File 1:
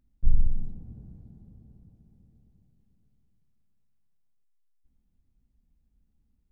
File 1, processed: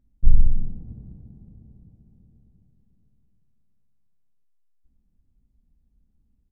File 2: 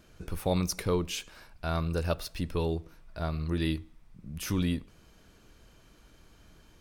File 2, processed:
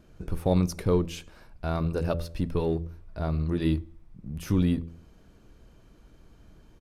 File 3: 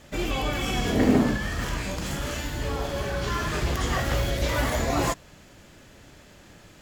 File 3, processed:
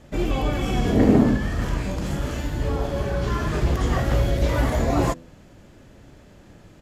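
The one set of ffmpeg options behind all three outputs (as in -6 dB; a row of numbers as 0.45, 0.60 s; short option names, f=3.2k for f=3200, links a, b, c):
-filter_complex "[0:a]tiltshelf=f=970:g=5.5,asplit=2[a][b];[b]aeval=exprs='sgn(val(0))*max(abs(val(0))-0.0141,0)':c=same,volume=-12dB[c];[a][c]amix=inputs=2:normalize=0,bandreject=f=83.69:t=h:w=4,bandreject=f=167.38:t=h:w=4,bandreject=f=251.07:t=h:w=4,bandreject=f=334.76:t=h:w=4,bandreject=f=418.45:t=h:w=4,bandreject=f=502.14:t=h:w=4,bandreject=f=585.83:t=h:w=4,aresample=32000,aresample=44100,volume=-1dB"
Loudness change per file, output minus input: +6.5, +4.0, +3.5 LU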